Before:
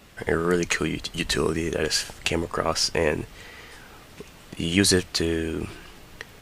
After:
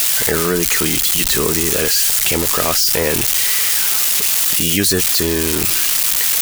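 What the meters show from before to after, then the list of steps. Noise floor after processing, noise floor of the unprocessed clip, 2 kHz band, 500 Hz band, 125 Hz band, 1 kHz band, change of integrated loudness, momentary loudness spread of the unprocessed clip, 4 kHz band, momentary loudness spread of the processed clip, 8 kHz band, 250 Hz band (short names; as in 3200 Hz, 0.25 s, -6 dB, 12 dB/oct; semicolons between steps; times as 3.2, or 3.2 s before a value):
-17 dBFS, -48 dBFS, +7.5 dB, +4.5 dB, +4.5 dB, +6.5 dB, +11.5 dB, 22 LU, +10.5 dB, 2 LU, +17.0 dB, +4.5 dB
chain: switching spikes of -10 dBFS; spectral gate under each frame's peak -30 dB strong; fast leveller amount 70%; gain -1 dB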